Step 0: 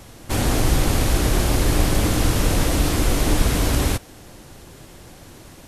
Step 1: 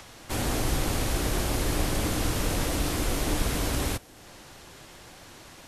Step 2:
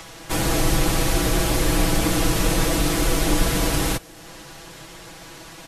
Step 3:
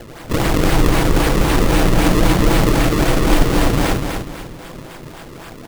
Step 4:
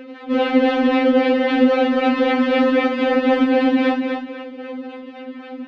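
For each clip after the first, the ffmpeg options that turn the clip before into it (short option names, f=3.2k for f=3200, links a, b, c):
-filter_complex "[0:a]lowshelf=f=240:g=-4,acrossover=split=200|700|7100[a][b][c][d];[c]acompressor=mode=upward:threshold=-37dB:ratio=2.5[e];[a][b][e][d]amix=inputs=4:normalize=0,volume=-6dB"
-af "aecho=1:1:6.1:0.69,volume=5.5dB"
-af "acrusher=samples=33:mix=1:aa=0.000001:lfo=1:lforange=52.8:lforate=3.8,aecho=1:1:248|496|744|992:0.531|0.181|0.0614|0.0209,volume=5dB"
-af "highpass=110,equalizer=f=250:t=q:w=4:g=5,equalizer=f=520:t=q:w=4:g=4,equalizer=f=1.1k:t=q:w=4:g=-7,lowpass=f=3.2k:w=0.5412,lowpass=f=3.2k:w=1.3066,afftfilt=real='re*3.46*eq(mod(b,12),0)':imag='im*3.46*eq(mod(b,12),0)':win_size=2048:overlap=0.75,volume=2dB"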